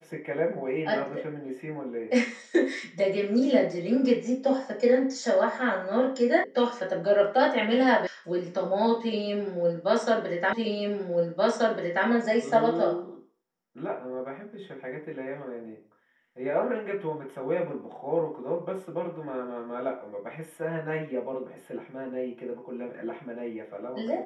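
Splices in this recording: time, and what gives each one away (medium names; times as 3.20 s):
6.44 s: sound stops dead
8.07 s: sound stops dead
10.53 s: repeat of the last 1.53 s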